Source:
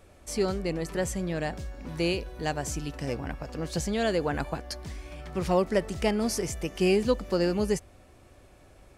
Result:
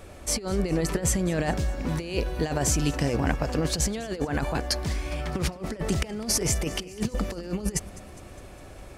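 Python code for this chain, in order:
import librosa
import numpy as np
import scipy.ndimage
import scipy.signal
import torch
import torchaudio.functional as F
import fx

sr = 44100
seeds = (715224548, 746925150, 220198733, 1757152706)

p1 = fx.over_compress(x, sr, threshold_db=-32.0, ratio=-0.5)
p2 = p1 + fx.echo_feedback(p1, sr, ms=204, feedback_pct=60, wet_db=-20.0, dry=0)
y = F.gain(torch.from_numpy(p2), 6.0).numpy()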